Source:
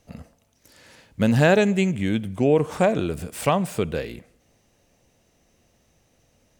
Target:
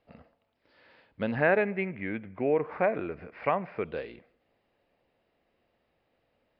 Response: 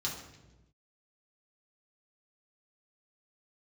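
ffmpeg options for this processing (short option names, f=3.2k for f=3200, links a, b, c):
-filter_complex "[0:a]asettb=1/sr,asplit=3[a][b][c];[a]atrim=end=1.354[d];[b]atrim=start=1.35:end=3.85,asetpts=PTS-STARTPTS,afade=t=in:d=0.004:c=qsin,afade=t=out:st=2.496:d=0.004:c=qsin,highshelf=f=2.7k:t=q:w=3:g=-7[e];[c]atrim=start=3.846[f];[d][e]acrossfade=d=0.004:c1=hsin:c2=qsin[g];[g][f]acrossfade=d=0.004:c1=qsin:c2=hsin,aresample=11025,aresample=44100,bass=f=250:g=-11,treble=f=4k:g=-15,volume=-6dB"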